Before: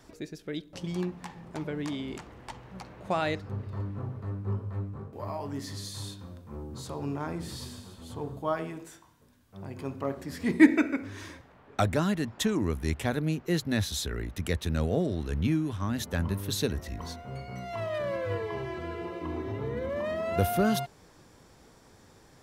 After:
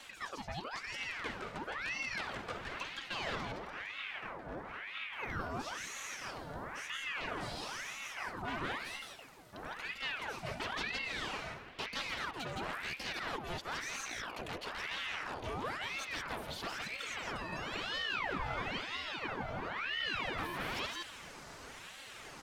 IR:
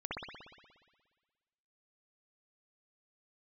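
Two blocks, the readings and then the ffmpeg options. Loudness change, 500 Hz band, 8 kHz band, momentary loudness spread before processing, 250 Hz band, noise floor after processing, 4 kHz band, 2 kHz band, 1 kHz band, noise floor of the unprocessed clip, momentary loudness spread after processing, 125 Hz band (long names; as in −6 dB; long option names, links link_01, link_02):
−8.5 dB, −12.5 dB, −6.0 dB, 15 LU, −18.5 dB, −51 dBFS, 0.0 dB, +1.0 dB, −3.0 dB, −57 dBFS, 8 LU, −17.0 dB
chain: -filter_complex "[0:a]aeval=exprs='0.0562*(abs(mod(val(0)/0.0562+3,4)-2)-1)':channel_layout=same,aecho=1:1:3.7:0.87,areverse,acompressor=threshold=-40dB:ratio=6,areverse,asplit=2[link_01][link_02];[link_02]highpass=frequency=720:poles=1,volume=11dB,asoftclip=type=tanh:threshold=-30dB[link_03];[link_01][link_03]amix=inputs=2:normalize=0,lowpass=frequency=6700:poles=1,volume=-6dB,acrossover=split=4000[link_04][link_05];[link_05]acompressor=threshold=-56dB:ratio=4:attack=1:release=60[link_06];[link_04][link_06]amix=inputs=2:normalize=0,aecho=1:1:166:0.708,asplit=2[link_07][link_08];[1:a]atrim=start_sample=2205[link_09];[link_08][link_09]afir=irnorm=-1:irlink=0,volume=-18dB[link_10];[link_07][link_10]amix=inputs=2:normalize=0,aeval=exprs='val(0)*sin(2*PI*1400*n/s+1400*0.75/1*sin(2*PI*1*n/s))':channel_layout=same,volume=2.5dB"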